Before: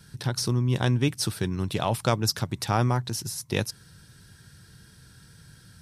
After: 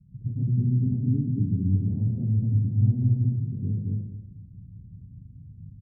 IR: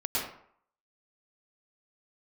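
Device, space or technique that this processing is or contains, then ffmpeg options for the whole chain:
club heard from the street: -filter_complex "[0:a]asettb=1/sr,asplit=3[a][b][c];[a]atrim=end=2.554[d];[b]atrim=start=2.55:end=3.09,asetpts=PTS-STARTPTS,afade=t=in:d=0.004:c=qsin,afade=t=out:st=0.536:d=0.004:c=qsin,lowpass=f=1.1k:w=0.5412,lowpass=f=1.1k:w=1.3066[e];[c]atrim=start=3.086[f];[d][e]acrossfade=d=0.004:c1=hsin:c2=qsin[g];[g][f]acrossfade=d=0.004:c1=qsin:c2=hsin,aecho=1:1:224|448|672:0.596|0.125|0.0263,alimiter=limit=-15.5dB:level=0:latency=1:release=152,lowpass=f=210:w=0.5412,lowpass=f=210:w=1.3066[h];[1:a]atrim=start_sample=2205[i];[h][i]afir=irnorm=-1:irlink=0"

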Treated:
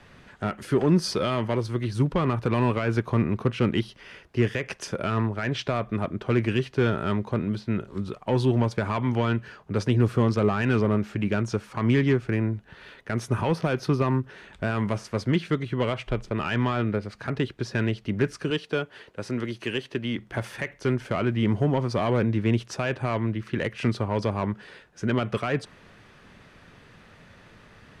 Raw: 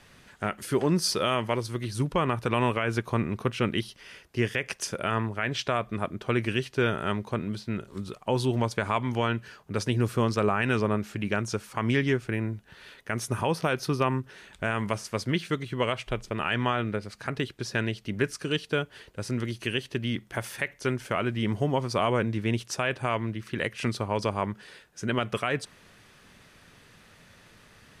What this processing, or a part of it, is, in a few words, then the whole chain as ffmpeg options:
one-band saturation: -filter_complex "[0:a]asettb=1/sr,asplit=3[a][b][c];[a]atrim=end=18.504[d];[b]atrim=start=18.5:end=20.19,asetpts=PTS-STARTPTS,afade=t=in:d=0.004:c=qsin,afade=t=out:st=1.686:d=0.004:c=qsin,highpass=f=260:p=1[e];[c]atrim=start=20.186[f];[d][e]acrossfade=d=0.004:c1=hsin:c2=qsin[g];[g][f]acrossfade=d=0.004:c1=qsin:c2=hsin,acrossover=split=340|3300[h][i][j];[i]asoftclip=type=tanh:threshold=-27dB[k];[h][k][j]amix=inputs=3:normalize=0,aemphasis=mode=reproduction:type=75kf,volume=5dB"

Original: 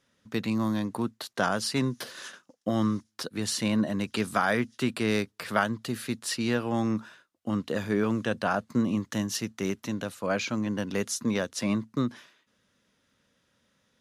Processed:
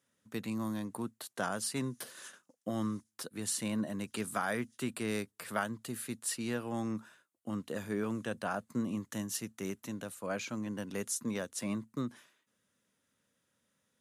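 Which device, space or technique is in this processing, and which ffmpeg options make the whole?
budget condenser microphone: -af "highpass=78,highshelf=f=6.6k:t=q:w=1.5:g=7.5,volume=-8.5dB"

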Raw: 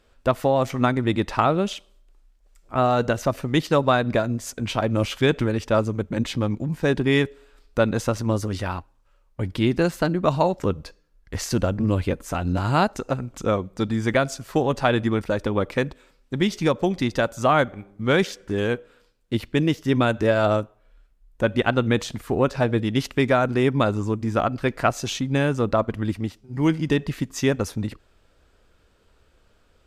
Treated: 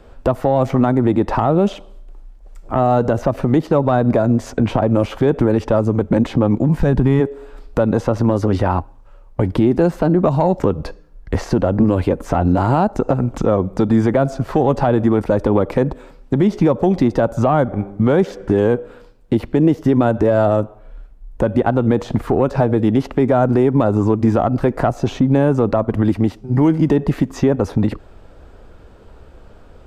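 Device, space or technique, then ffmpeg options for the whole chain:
mastering chain: -filter_complex "[0:a]asplit=3[a][b][c];[a]afade=t=out:st=6.78:d=0.02[d];[b]asubboost=boost=11:cutoff=110,afade=t=in:st=6.78:d=0.02,afade=t=out:st=7.19:d=0.02[e];[c]afade=t=in:st=7.19:d=0.02[f];[d][e][f]amix=inputs=3:normalize=0,equalizer=f=810:t=o:w=0.61:g=4,acrossover=split=250|1500|5500[g][h][i][j];[g]acompressor=threshold=-33dB:ratio=4[k];[h]acompressor=threshold=-23dB:ratio=4[l];[i]acompressor=threshold=-43dB:ratio=4[m];[j]acompressor=threshold=-53dB:ratio=4[n];[k][l][m][n]amix=inputs=4:normalize=0,acompressor=threshold=-30dB:ratio=1.5,asoftclip=type=tanh:threshold=-16.5dB,tiltshelf=f=1.4k:g=7,alimiter=level_in=16dB:limit=-1dB:release=50:level=0:latency=1,volume=-4.5dB"

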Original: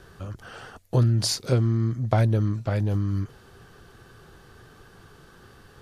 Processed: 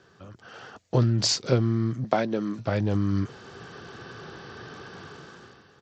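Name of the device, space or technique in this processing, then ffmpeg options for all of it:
Bluetooth headset: -filter_complex "[0:a]asettb=1/sr,asplit=3[a][b][c];[a]atrim=end=2.044[d];[b]atrim=start=2.04:end=2.59,asetpts=PTS-STARTPTS,afade=t=in:d=0.004:c=qsin,afade=t=out:st=0.546:d=0.004:c=qsin,highpass=f=190:w=0.5412,highpass=f=190:w=1.3066[e];[c]atrim=start=2.586[f];[d][e]acrossfade=d=0.004:c1=hsin:c2=qsin[g];[g][f]acrossfade=d=0.004:c1=qsin:c2=hsin,highpass=140,dynaudnorm=f=160:g=9:m=16dB,aresample=16000,aresample=44100,volume=-6dB" -ar 32000 -c:a sbc -b:a 64k

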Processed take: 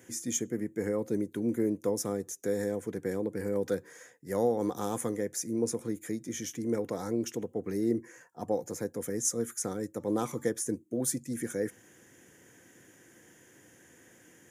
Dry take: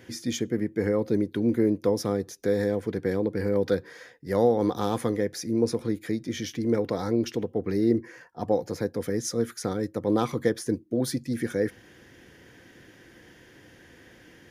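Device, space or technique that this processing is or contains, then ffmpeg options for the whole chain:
budget condenser microphone: -filter_complex "[0:a]asplit=3[a][b][c];[a]afade=t=out:st=9.98:d=0.02[d];[b]bandreject=f=290.8:t=h:w=4,bandreject=f=581.6:t=h:w=4,bandreject=f=872.4:t=h:w=4,bandreject=f=1.1632k:t=h:w=4,bandreject=f=1.454k:t=h:w=4,bandreject=f=1.7448k:t=h:w=4,bandreject=f=2.0356k:t=h:w=4,bandreject=f=2.3264k:t=h:w=4,bandreject=f=2.6172k:t=h:w=4,bandreject=f=2.908k:t=h:w=4,bandreject=f=3.1988k:t=h:w=4,bandreject=f=3.4896k:t=h:w=4,bandreject=f=3.7804k:t=h:w=4,bandreject=f=4.0712k:t=h:w=4,bandreject=f=4.362k:t=h:w=4,bandreject=f=4.6528k:t=h:w=4,bandreject=f=4.9436k:t=h:w=4,bandreject=f=5.2344k:t=h:w=4,bandreject=f=5.5252k:t=h:w=4,bandreject=f=5.816k:t=h:w=4,bandreject=f=6.1068k:t=h:w=4,bandreject=f=6.3976k:t=h:w=4,bandreject=f=6.6884k:t=h:w=4,bandreject=f=6.9792k:t=h:w=4,bandreject=f=7.27k:t=h:w=4,bandreject=f=7.5608k:t=h:w=4,bandreject=f=7.8516k:t=h:w=4,bandreject=f=8.1424k:t=h:w=4,bandreject=f=8.4332k:t=h:w=4,afade=t=in:st=9.98:d=0.02,afade=t=out:st=10.47:d=0.02[e];[c]afade=t=in:st=10.47:d=0.02[f];[d][e][f]amix=inputs=3:normalize=0,highpass=110,highshelf=f=5.7k:t=q:w=3:g=8.5,volume=-6dB"

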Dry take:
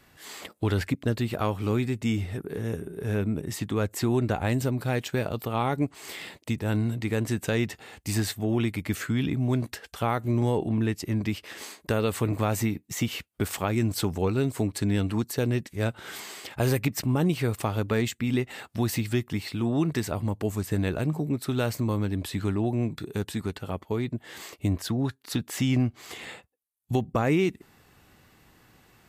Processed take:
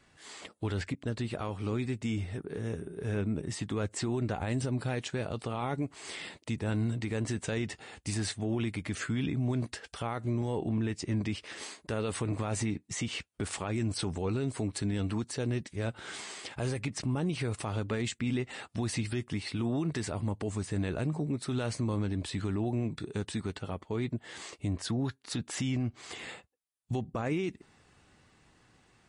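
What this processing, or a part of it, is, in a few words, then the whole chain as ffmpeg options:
low-bitrate web radio: -af "dynaudnorm=f=880:g=7:m=3dB,alimiter=limit=-18.5dB:level=0:latency=1:release=50,volume=-5dB" -ar 32000 -c:a libmp3lame -b:a 40k

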